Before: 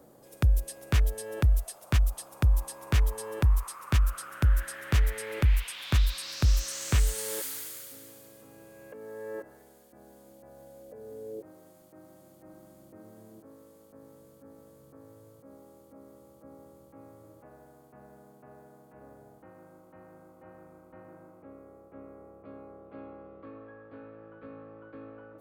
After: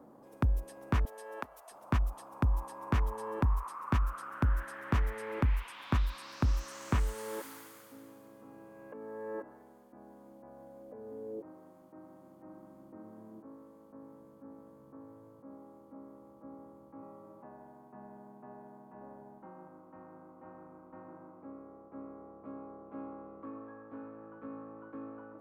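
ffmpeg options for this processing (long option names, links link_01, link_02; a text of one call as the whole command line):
ffmpeg -i in.wav -filter_complex "[0:a]asettb=1/sr,asplit=3[link_01][link_02][link_03];[link_01]atrim=end=1.054[link_04];[link_02]atrim=start=1.05:end=1.71,asetpts=PTS-STARTPTS,afade=type=in:duration=0.004:curve=qsin,afade=type=out:start_time=0.656:duration=0.004:curve=qsin,highpass=610[link_05];[link_03]atrim=start=1.706[link_06];[link_04][link_05]acrossfade=duration=0.004:curve1=hsin:curve2=qsin[link_07];[link_07][link_06]acrossfade=duration=0.004:curve1=qsin:curve2=hsin,asettb=1/sr,asplit=3[link_08][link_09][link_10];[link_08]atrim=end=17.024[link_11];[link_09]atrim=start=17.02:end=19.68,asetpts=PTS-STARTPTS,afade=type=in:duration=0.004:curve=qsin,afade=type=out:start_time=2.656:duration=0.004:curve=qsin,aecho=1:1:5.2:0.65,atrim=end_sample=117306[link_12];[link_10]atrim=start=19.676[link_13];[link_11][link_12]acrossfade=duration=0.004:curve1=hsin:curve2=qsin[link_14];[link_14][link_13]acrossfade=duration=0.004:curve1=qsin:curve2=hsin,equalizer=frequency=250:width_type=o:width=1:gain=11,equalizer=frequency=1000:width_type=o:width=1:gain=12,equalizer=frequency=4000:width_type=o:width=1:gain=-5,equalizer=frequency=8000:width_type=o:width=1:gain=-5,equalizer=frequency=16000:width_type=o:width=1:gain=-9,volume=-7dB" out.wav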